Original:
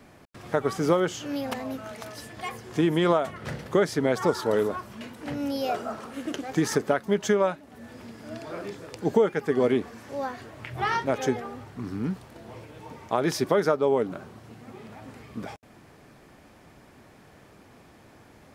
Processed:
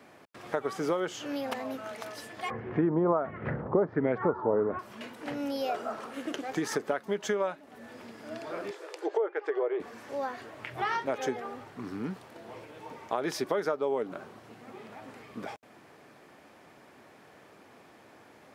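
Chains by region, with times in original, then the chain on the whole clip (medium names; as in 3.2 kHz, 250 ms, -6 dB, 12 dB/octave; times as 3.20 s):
2.50–4.79 s: LFO low-pass sine 1.4 Hz 930–2300 Hz + tilt EQ -4.5 dB/octave
8.71–9.80 s: brick-wall FIR high-pass 310 Hz + low-pass that closes with the level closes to 1.5 kHz, closed at -19.5 dBFS
whole clip: high-pass 100 Hz; tone controls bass -9 dB, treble -4 dB; compression 2:1, threshold -30 dBFS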